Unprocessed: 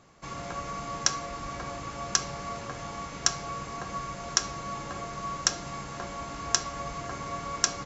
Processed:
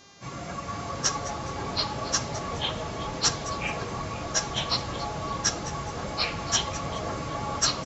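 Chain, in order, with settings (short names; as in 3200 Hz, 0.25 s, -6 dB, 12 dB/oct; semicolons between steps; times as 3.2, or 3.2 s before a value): phase scrambler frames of 50 ms; HPF 54 Hz; bell 120 Hz +4 dB 2.7 oct; frequency-shifting echo 0.21 s, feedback 34%, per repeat +140 Hz, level -15 dB; echoes that change speed 0.378 s, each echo -5 st, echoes 3; buzz 400 Hz, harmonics 17, -55 dBFS 0 dB/oct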